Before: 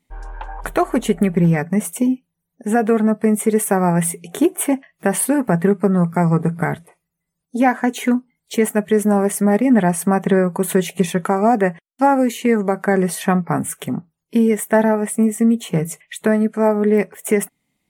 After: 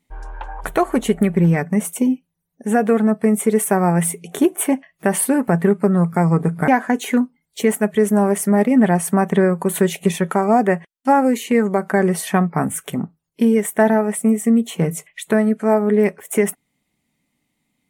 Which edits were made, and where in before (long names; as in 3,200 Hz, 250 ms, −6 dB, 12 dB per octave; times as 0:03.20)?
0:06.68–0:07.62: remove